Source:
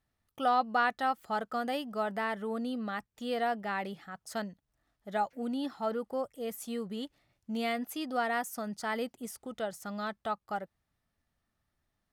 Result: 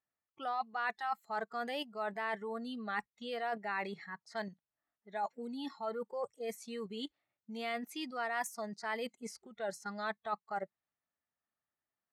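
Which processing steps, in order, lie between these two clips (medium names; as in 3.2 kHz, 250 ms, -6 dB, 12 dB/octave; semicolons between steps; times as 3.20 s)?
spectral noise reduction 17 dB; level-controlled noise filter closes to 2.5 kHz, open at -31.5 dBFS; in parallel at +1 dB: level held to a coarse grid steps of 21 dB; on the sum: treble shelf 6.9 kHz -11 dB; reverse; compression 10:1, threshold -37 dBFS, peak gain reduction 15.5 dB; reverse; high-pass 620 Hz 6 dB/octave; trim +5.5 dB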